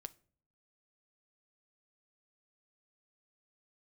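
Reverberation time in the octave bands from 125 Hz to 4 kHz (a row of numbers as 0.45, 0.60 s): 0.80, 0.75, 0.55, 0.40, 0.35, 0.30 s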